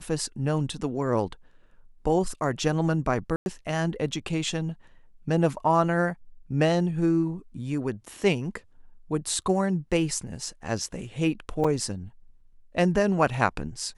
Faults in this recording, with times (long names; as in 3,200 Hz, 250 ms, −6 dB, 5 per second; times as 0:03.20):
0:03.36–0:03.46: drop-out 101 ms
0:11.64–0:11.65: drop-out 5.2 ms